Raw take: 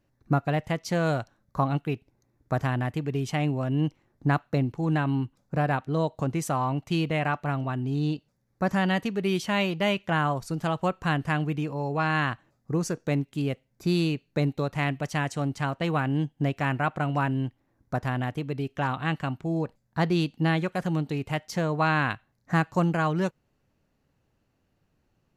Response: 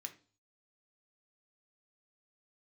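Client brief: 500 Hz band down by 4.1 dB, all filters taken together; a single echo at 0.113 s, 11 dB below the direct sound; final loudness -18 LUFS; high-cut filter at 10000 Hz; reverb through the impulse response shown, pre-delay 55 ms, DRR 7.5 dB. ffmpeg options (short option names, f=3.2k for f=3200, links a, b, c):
-filter_complex "[0:a]lowpass=10k,equalizer=f=500:t=o:g=-5.5,aecho=1:1:113:0.282,asplit=2[a][b];[1:a]atrim=start_sample=2205,adelay=55[c];[b][c]afir=irnorm=-1:irlink=0,volume=-3.5dB[d];[a][d]amix=inputs=2:normalize=0,volume=10dB"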